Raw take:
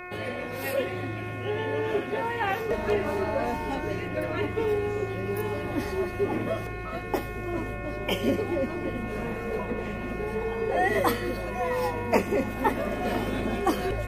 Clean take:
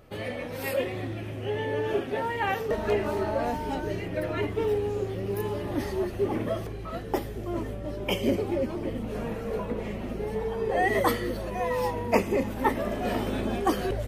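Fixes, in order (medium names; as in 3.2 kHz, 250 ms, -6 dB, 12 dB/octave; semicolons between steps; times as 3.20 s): de-hum 360.6 Hz, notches 7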